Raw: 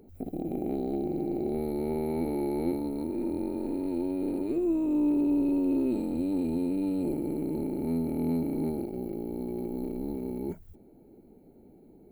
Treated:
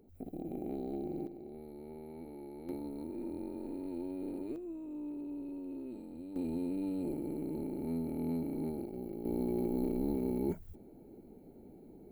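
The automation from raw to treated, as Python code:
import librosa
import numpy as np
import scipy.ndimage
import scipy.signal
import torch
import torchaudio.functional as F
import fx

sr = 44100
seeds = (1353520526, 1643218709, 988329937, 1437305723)

y = fx.gain(x, sr, db=fx.steps((0.0, -8.0), (1.27, -17.5), (2.69, -9.5), (4.56, -16.5), (6.36, -7.0), (9.25, 0.5)))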